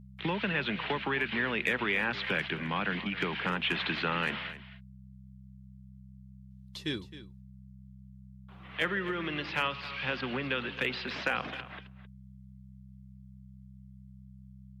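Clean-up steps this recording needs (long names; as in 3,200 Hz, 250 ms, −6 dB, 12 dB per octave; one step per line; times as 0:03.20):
clipped peaks rebuilt −18 dBFS
hum removal 64.7 Hz, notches 3
echo removal 264 ms −15 dB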